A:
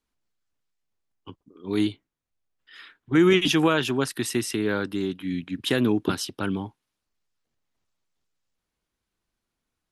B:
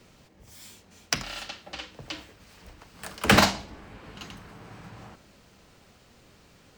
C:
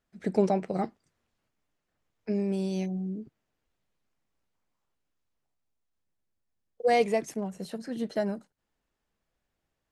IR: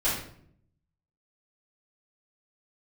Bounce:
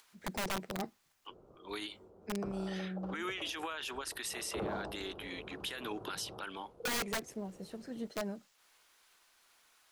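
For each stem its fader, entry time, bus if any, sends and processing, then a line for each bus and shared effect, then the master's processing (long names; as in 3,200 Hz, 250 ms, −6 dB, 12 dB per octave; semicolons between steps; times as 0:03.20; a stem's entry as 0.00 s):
−1.0 dB, 0.00 s, no send, upward compression, threshold −45 dBFS; high-pass filter 820 Hz 12 dB per octave; downward compressor 4 to 1, threshold −31 dBFS, peak gain reduction 9.5 dB
−7.0 dB, 1.30 s, no send, drawn EQ curve 260 Hz 0 dB, 370 Hz +13 dB, 1,400 Hz −4 dB, 1,900 Hz −28 dB
−8.5 dB, 0.00 s, no send, wrap-around overflow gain 20.5 dB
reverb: not used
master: brickwall limiter −29.5 dBFS, peak gain reduction 19.5 dB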